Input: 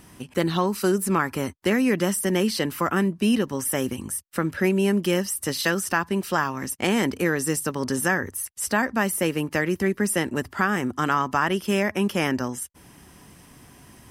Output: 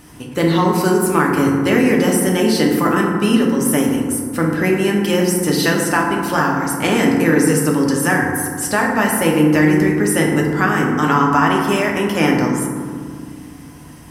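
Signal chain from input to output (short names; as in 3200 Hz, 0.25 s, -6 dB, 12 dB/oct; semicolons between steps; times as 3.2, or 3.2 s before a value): FDN reverb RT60 2 s, low-frequency decay 1.5×, high-frequency decay 0.35×, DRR -1.5 dB; gain +4 dB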